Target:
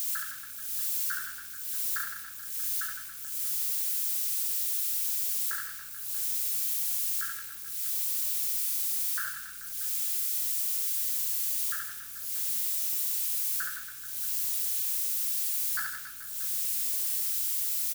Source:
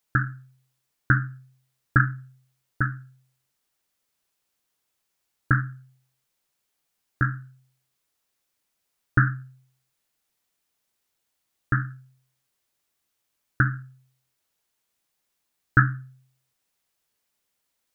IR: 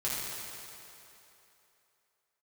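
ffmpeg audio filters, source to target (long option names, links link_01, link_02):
-filter_complex "[0:a]aeval=exprs='val(0)+0.5*0.0282*sgn(val(0))':channel_layout=same,highpass=frequency=1400:poles=1,aderivative,volume=31dB,asoftclip=hard,volume=-31dB,aeval=exprs='val(0)+0.000398*(sin(2*PI*60*n/s)+sin(2*PI*2*60*n/s)/2+sin(2*PI*3*60*n/s)/3+sin(2*PI*4*60*n/s)/4+sin(2*PI*5*60*n/s)/5)':channel_layout=same,aecho=1:1:70|161|279.3|433.1|633:0.631|0.398|0.251|0.158|0.1,asplit=2[link_01][link_02];[1:a]atrim=start_sample=2205[link_03];[link_02][link_03]afir=irnorm=-1:irlink=0,volume=-27.5dB[link_04];[link_01][link_04]amix=inputs=2:normalize=0,volume=2dB"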